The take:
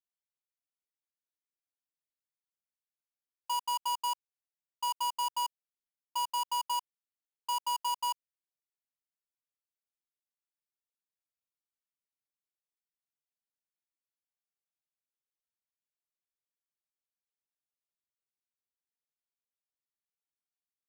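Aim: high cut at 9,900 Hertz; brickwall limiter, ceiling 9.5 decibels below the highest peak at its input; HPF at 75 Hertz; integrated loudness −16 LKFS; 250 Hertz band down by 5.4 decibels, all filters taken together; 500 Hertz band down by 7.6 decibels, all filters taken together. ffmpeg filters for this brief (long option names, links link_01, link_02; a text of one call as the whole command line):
ffmpeg -i in.wav -af "highpass=75,lowpass=9900,equalizer=frequency=250:width_type=o:gain=-5,equalizer=frequency=500:width_type=o:gain=-7,volume=28.5dB,alimiter=limit=-6.5dB:level=0:latency=1" out.wav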